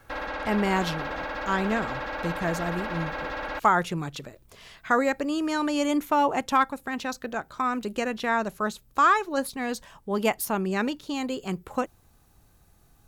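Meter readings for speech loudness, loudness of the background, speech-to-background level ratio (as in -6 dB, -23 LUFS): -27.0 LUFS, -33.0 LUFS, 6.0 dB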